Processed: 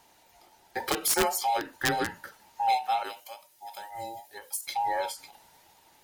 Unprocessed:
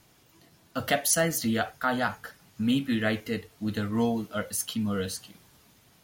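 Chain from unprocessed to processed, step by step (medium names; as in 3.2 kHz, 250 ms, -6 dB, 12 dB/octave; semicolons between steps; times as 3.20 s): every band turned upside down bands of 1 kHz; 3.03–4.67 s: pre-emphasis filter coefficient 0.8; integer overflow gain 15 dB; endings held to a fixed fall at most 180 dB/s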